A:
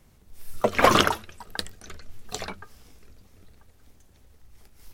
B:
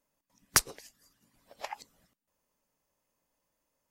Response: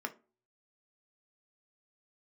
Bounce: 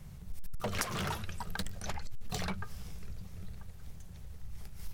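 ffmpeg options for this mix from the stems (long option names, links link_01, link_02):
-filter_complex "[0:a]lowshelf=frequency=210:width_type=q:width=3:gain=6.5,acompressor=threshold=-22dB:ratio=6,asoftclip=type=hard:threshold=-29dB,volume=2.5dB[link_01];[1:a]adelay=250,volume=-1dB[link_02];[link_01][link_02]amix=inputs=2:normalize=0,acompressor=threshold=-32dB:ratio=6"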